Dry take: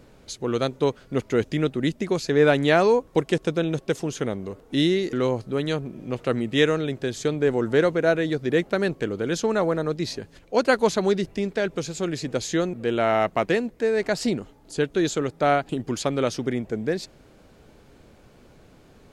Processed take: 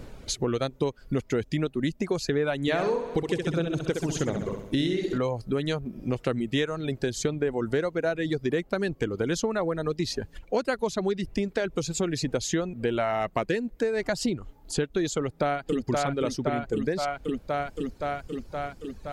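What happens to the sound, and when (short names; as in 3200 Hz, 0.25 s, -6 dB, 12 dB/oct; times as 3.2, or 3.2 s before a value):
2.61–5.18 flutter echo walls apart 11.2 m, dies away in 1.1 s
15.17–15.84 echo throw 0.52 s, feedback 70%, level -2.5 dB
whole clip: reverb removal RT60 1 s; low shelf 77 Hz +10 dB; compressor 6:1, threshold -30 dBFS; gain +6 dB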